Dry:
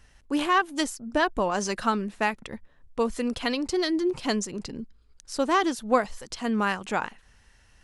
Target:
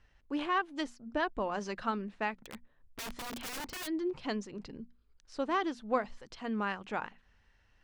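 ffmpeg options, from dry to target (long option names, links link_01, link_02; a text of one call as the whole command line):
ffmpeg -i in.wav -filter_complex "[0:a]lowpass=3800,bandreject=frequency=60:width_type=h:width=6,bandreject=frequency=120:width_type=h:width=6,bandreject=frequency=180:width_type=h:width=6,bandreject=frequency=240:width_type=h:width=6,asplit=3[link_01][link_02][link_03];[link_01]afade=type=out:start_time=2.4:duration=0.02[link_04];[link_02]aeval=exprs='(mod(22.4*val(0)+1,2)-1)/22.4':channel_layout=same,afade=type=in:start_time=2.4:duration=0.02,afade=type=out:start_time=3.86:duration=0.02[link_05];[link_03]afade=type=in:start_time=3.86:duration=0.02[link_06];[link_04][link_05][link_06]amix=inputs=3:normalize=0,volume=-8.5dB" out.wav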